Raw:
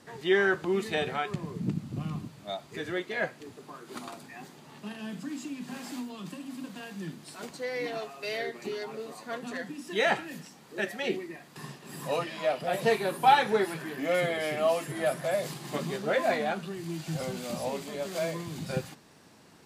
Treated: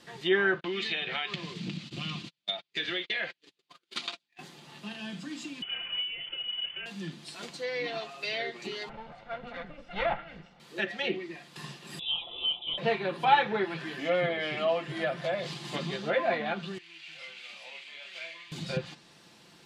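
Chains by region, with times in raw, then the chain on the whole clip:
0:00.60–0:04.39: noise gate −42 dBFS, range −41 dB + meter weighting curve D + downward compressor 3 to 1, threshold −30 dBFS
0:05.62–0:06.86: low-shelf EQ 160 Hz −11 dB + voice inversion scrambler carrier 3,200 Hz
0:08.89–0:10.60: lower of the sound and its delayed copy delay 1.4 ms + low-pass filter 1,800 Hz
0:11.99–0:12.78: voice inversion scrambler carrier 3,700 Hz + Butterworth band-reject 1,700 Hz, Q 0.72
0:16.78–0:18.52: resonant band-pass 2,400 Hz, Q 2.6 + flutter between parallel walls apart 4.7 metres, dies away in 0.25 s
whole clip: parametric band 3,400 Hz +9.5 dB 1.4 octaves; comb filter 5.8 ms, depth 41%; treble cut that deepens with the level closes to 2,300 Hz, closed at −22.5 dBFS; level −3 dB

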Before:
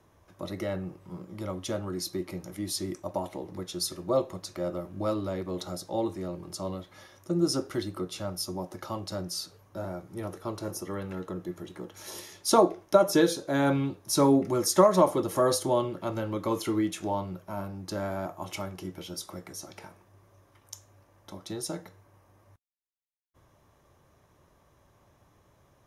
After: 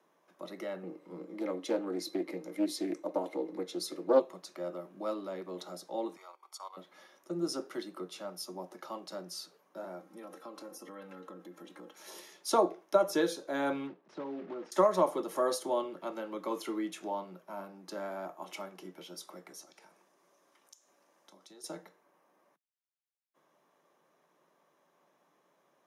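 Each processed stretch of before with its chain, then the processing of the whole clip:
0:00.83–0:04.20: hollow resonant body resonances 310/470/2,100/4,000 Hz, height 14 dB, ringing for 50 ms + highs frequency-modulated by the lows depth 0.26 ms
0:06.16–0:06.77: Butterworth high-pass 540 Hz + comb filter 0.9 ms, depth 78% + transient designer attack −2 dB, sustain −10 dB
0:09.99–0:11.95: comb filter 3.8 ms, depth 73% + downward compressor 5 to 1, threshold −36 dBFS
0:13.87–0:14.72: one scale factor per block 3 bits + downward compressor, threshold −27 dBFS + head-to-tape spacing loss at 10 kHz 43 dB
0:19.63–0:21.64: parametric band 6,800 Hz +9 dB 1.7 octaves + downward compressor 2 to 1, threshold −54 dBFS
whole clip: Butterworth high-pass 150 Hz 72 dB per octave; bass and treble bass −10 dB, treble −4 dB; level −5 dB

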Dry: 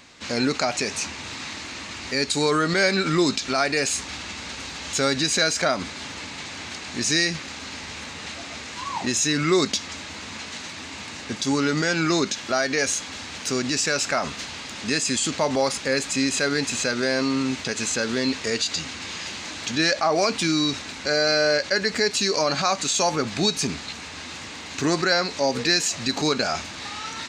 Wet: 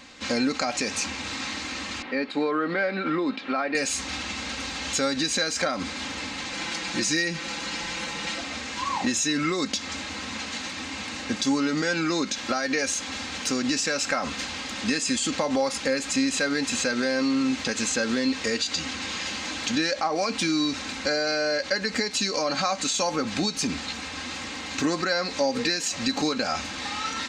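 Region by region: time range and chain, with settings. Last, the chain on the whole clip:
0:02.02–0:03.75: high-pass filter 250 Hz + high-frequency loss of the air 450 metres
0:06.52–0:08.41: comb filter 5.9 ms, depth 78% + hard clipping −7 dBFS
whole clip: downward compressor, threshold −24 dBFS; high-shelf EQ 7,000 Hz −4 dB; comb filter 3.8 ms, depth 52%; level +1.5 dB

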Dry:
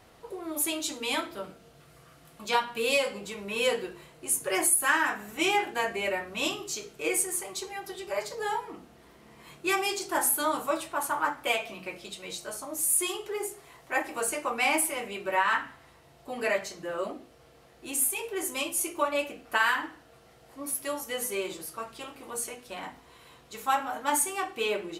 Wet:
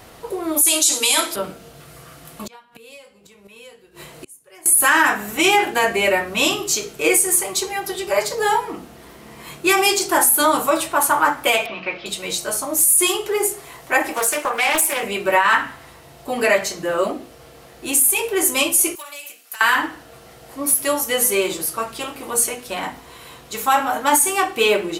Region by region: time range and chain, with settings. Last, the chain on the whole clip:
0:00.61–0:01.36: low-pass filter 12,000 Hz 24 dB per octave + bass and treble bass −13 dB, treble +15 dB
0:02.47–0:04.66: gate with flip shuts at −31 dBFS, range −32 dB + multiband upward and downward compressor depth 70%
0:11.66–0:12.06: spike at every zero crossing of −40.5 dBFS + Gaussian smoothing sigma 3 samples + tilt shelving filter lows −6.5 dB, about 690 Hz
0:14.13–0:15.03: high-pass filter 430 Hz + downward compressor 2 to 1, threshold −31 dBFS + highs frequency-modulated by the lows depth 0.34 ms
0:18.95–0:19.61: first difference + downward compressor 10 to 1, threshold −42 dBFS + saturating transformer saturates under 3,100 Hz
whole clip: high-shelf EQ 8,900 Hz +7 dB; boost into a limiter +17 dB; level −4.5 dB

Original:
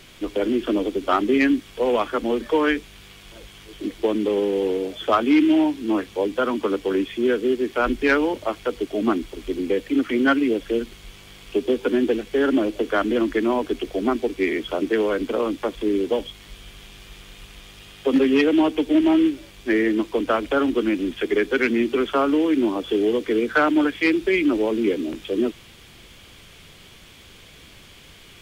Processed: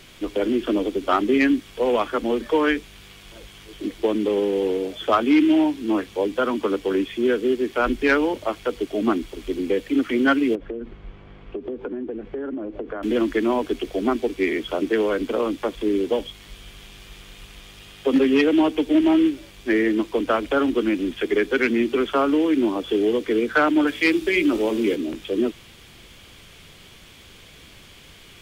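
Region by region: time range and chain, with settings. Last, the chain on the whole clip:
0:10.55–0:13.03: low-pass filter 1,800 Hz + tilt shelving filter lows +4 dB, about 1,300 Hz + downward compressor 12 to 1, threshold −26 dBFS
0:23.87–0:24.96: high-shelf EQ 3,500 Hz +6.5 dB + hum removal 63.15 Hz, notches 21
whole clip: no processing

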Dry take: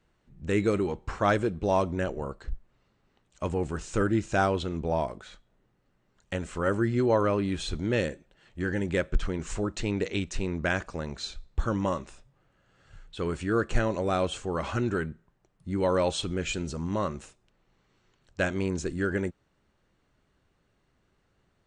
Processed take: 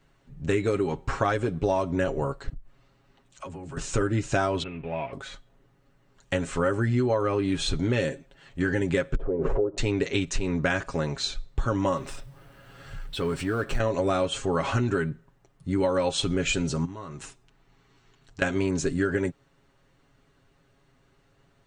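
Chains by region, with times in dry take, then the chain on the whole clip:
0:02.49–0:03.77: all-pass dispersion lows, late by 45 ms, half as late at 320 Hz + downward compressor, threshold −42 dBFS + notch filter 450 Hz
0:04.63–0:05.13: mu-law and A-law mismatch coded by mu + transistor ladder low-pass 2,700 Hz, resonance 80%
0:09.16–0:09.78: low-pass with resonance 500 Hz, resonance Q 1.7 + low shelf with overshoot 310 Hz −7.5 dB, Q 1.5 + background raised ahead of every attack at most 37 dB per second
0:11.97–0:13.80: mu-law and A-law mismatch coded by mu + notch filter 6,800 Hz, Q 7.4 + downward compressor 1.5 to 1, threshold −40 dBFS
0:16.85–0:18.42: notch filter 550 Hz, Q 7.8 + downward compressor 12 to 1, threshold −40 dBFS
whole clip: comb filter 7.3 ms, depth 63%; downward compressor 10 to 1, threshold −26 dBFS; level +5.5 dB

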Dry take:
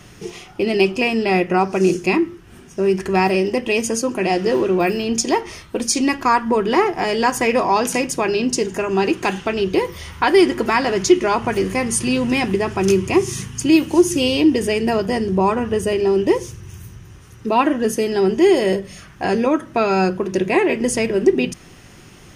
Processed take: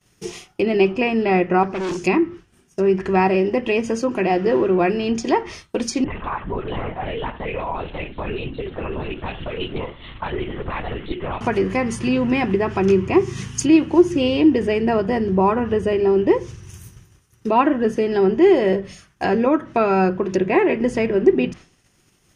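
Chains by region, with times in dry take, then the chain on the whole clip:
0:01.63–0:02.06: low-pass filter 10,000 Hz + hard clipping −22.5 dBFS
0:06.04–0:11.41: downward compressor 12 to 1, threshold −21 dBFS + three-band delay without the direct sound mids, highs, lows 30/70 ms, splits 240/1,700 Hz + linear-prediction vocoder at 8 kHz whisper
whole clip: treble cut that deepens with the level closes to 2,000 Hz, closed at −16 dBFS; downward expander −31 dBFS; high-shelf EQ 5,800 Hz +10.5 dB

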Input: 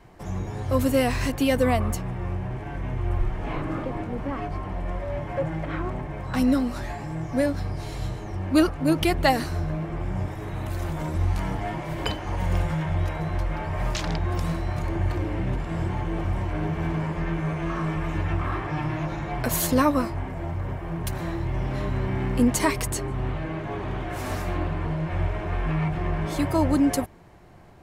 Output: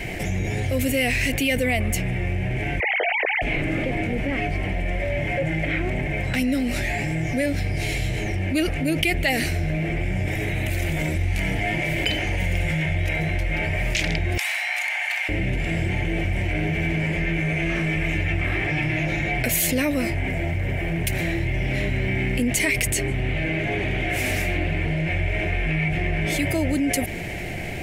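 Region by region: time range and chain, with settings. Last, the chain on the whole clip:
0:02.80–0:03.42: three sine waves on the formant tracks + Butterworth high-pass 420 Hz 48 dB per octave
0:14.38–0:15.29: elliptic high-pass filter 800 Hz, stop band 60 dB + flutter between parallel walls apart 11.9 metres, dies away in 0.23 s
whole clip: drawn EQ curve 700 Hz 0 dB, 1,100 Hz −17 dB, 2,200 Hz +15 dB, 4,100 Hz +2 dB, 8,300 Hz +6 dB; envelope flattener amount 70%; level −6.5 dB

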